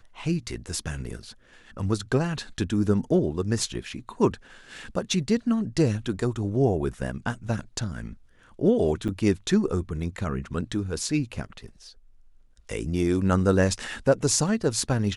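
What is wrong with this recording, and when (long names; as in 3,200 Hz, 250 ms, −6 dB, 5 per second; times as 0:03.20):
0:09.08–0:09.09: drop-out 7 ms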